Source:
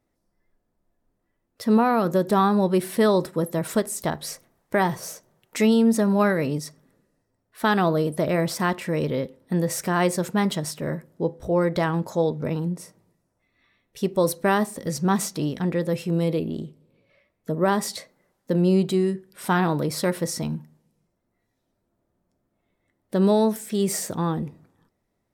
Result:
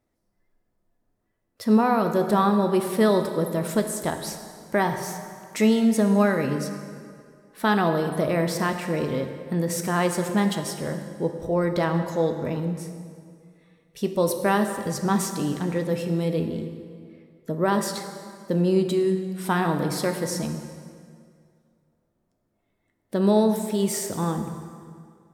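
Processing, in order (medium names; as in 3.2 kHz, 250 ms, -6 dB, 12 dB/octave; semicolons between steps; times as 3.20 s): plate-style reverb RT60 2.2 s, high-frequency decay 0.75×, DRR 6 dB; trim -1.5 dB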